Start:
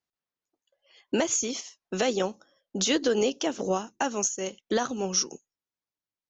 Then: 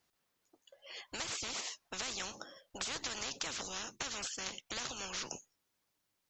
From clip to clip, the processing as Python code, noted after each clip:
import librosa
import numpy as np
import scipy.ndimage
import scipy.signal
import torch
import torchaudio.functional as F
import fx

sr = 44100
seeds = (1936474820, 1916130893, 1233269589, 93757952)

y = fx.spectral_comp(x, sr, ratio=10.0)
y = y * librosa.db_to_amplitude(-4.0)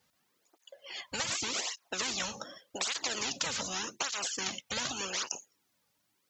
y = fx.flanger_cancel(x, sr, hz=0.85, depth_ms=3.1)
y = y * librosa.db_to_amplitude(9.0)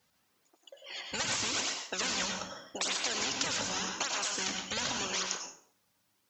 y = fx.rev_plate(x, sr, seeds[0], rt60_s=0.55, hf_ratio=0.7, predelay_ms=85, drr_db=2.5)